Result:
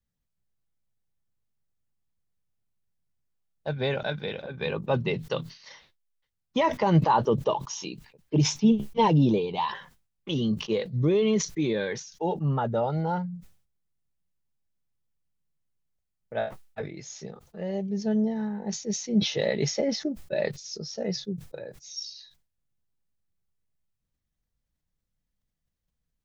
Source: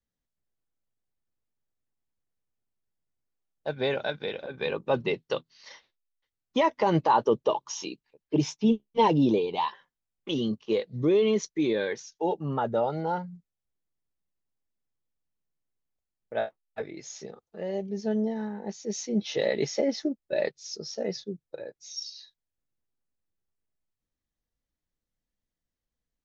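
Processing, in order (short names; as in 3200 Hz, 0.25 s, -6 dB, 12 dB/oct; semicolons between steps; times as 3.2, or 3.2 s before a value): resonant low shelf 220 Hz +6 dB, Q 1.5; sustainer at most 120 dB/s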